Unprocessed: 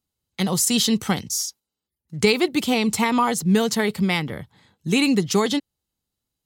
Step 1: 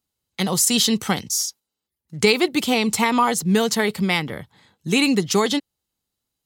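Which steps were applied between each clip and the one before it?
low shelf 240 Hz -5.5 dB; gain +2.5 dB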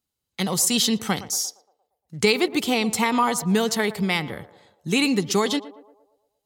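narrowing echo 0.116 s, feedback 55%, band-pass 630 Hz, level -13.5 dB; gain -2.5 dB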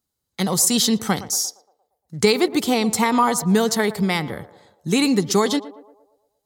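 bell 2700 Hz -7.5 dB 0.67 oct; gain +3.5 dB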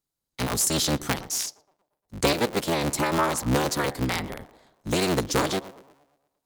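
cycle switcher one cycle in 3, inverted; gain -6 dB

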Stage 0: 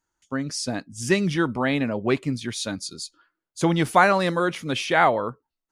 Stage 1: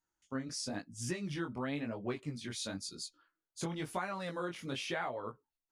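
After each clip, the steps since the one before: compressor 5:1, threshold -26 dBFS, peak gain reduction 13.5 dB; chorus 0.98 Hz, delay 16 ms, depth 7.9 ms; gain -6 dB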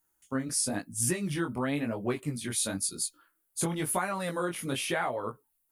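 resonant high shelf 7900 Hz +13 dB, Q 1.5; gain +7 dB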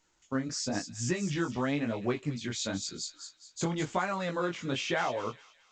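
thin delay 0.208 s, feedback 39%, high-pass 3100 Hz, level -7 dB; A-law 128 kbps 16000 Hz

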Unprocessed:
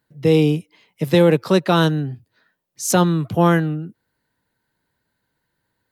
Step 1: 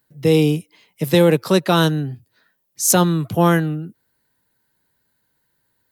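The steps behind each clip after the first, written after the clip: high shelf 6900 Hz +11.5 dB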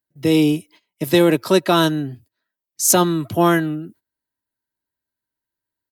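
gate -44 dBFS, range -18 dB; comb 3.1 ms, depth 46%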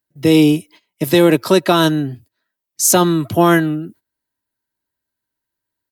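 maximiser +5.5 dB; gain -1 dB

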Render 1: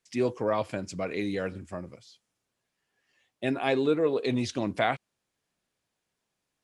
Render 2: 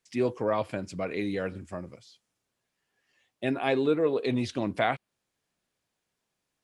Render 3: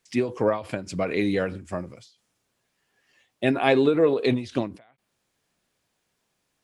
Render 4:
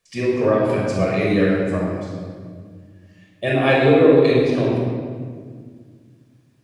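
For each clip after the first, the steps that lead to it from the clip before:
dynamic EQ 6400 Hz, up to -6 dB, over -56 dBFS, Q 1.4
ending taper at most 140 dB/s; gain +7 dB
shoebox room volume 3000 m³, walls mixed, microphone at 5.8 m; gain -2.5 dB

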